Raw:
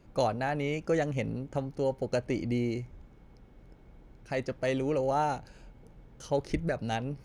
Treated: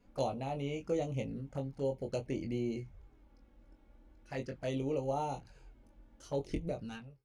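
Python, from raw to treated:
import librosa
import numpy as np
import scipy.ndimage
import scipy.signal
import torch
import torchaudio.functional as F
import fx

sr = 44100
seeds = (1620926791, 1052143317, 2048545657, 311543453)

y = fx.fade_out_tail(x, sr, length_s=0.51)
y = fx.env_flanger(y, sr, rest_ms=4.3, full_db=-27.0)
y = fx.room_early_taps(y, sr, ms=(22, 39), db=(-5.0, -18.0))
y = y * librosa.db_to_amplitude(-6.0)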